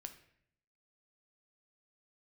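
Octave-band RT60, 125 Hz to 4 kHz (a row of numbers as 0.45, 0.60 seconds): 0.95, 0.90, 0.75, 0.60, 0.70, 0.55 seconds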